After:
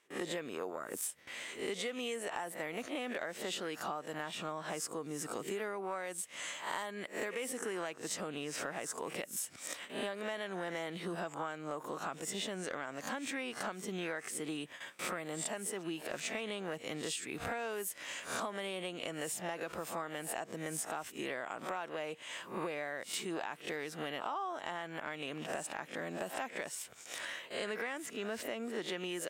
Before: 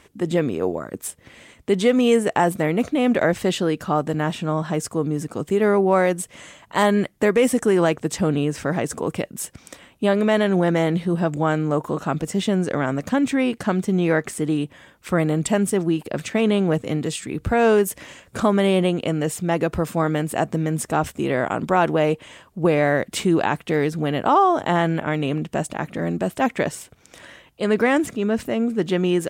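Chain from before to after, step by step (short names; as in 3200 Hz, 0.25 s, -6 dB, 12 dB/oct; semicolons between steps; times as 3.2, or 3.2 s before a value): spectral swells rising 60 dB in 0.32 s; gate with hold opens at -35 dBFS; HPF 1100 Hz 6 dB/oct; compressor 12:1, threshold -38 dBFS, peak gain reduction 22 dB; soft clip -24 dBFS, distortion -30 dB; gain +2.5 dB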